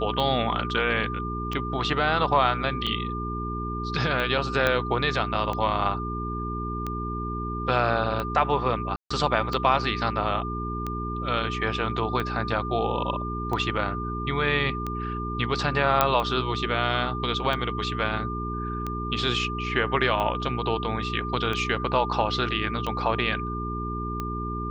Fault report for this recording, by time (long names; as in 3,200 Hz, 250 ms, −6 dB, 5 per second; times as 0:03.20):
mains hum 60 Hz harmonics 7 −32 dBFS
scratch tick 45 rpm −17 dBFS
whistle 1,200 Hz −32 dBFS
0:04.67: click −9 dBFS
0:08.96–0:09.11: drop-out 145 ms
0:16.01: click −5 dBFS